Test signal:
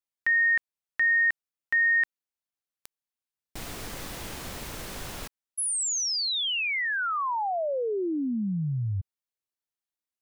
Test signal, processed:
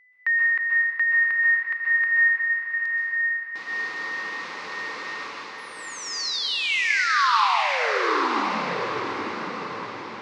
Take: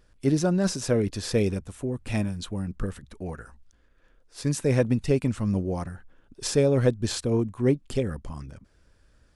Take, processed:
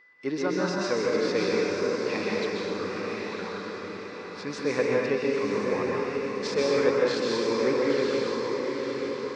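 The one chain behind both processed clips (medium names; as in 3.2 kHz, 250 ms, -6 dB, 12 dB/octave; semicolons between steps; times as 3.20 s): cabinet simulation 430–4800 Hz, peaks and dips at 660 Hz -9 dB, 1.1 kHz +8 dB, 2.1 kHz +3 dB, 3.2 kHz -5 dB; whistle 2 kHz -55 dBFS; on a send: echo that smears into a reverb 908 ms, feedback 49%, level -4 dB; on the sum: plate-style reverb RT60 1.5 s, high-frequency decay 0.95×, pre-delay 115 ms, DRR -3 dB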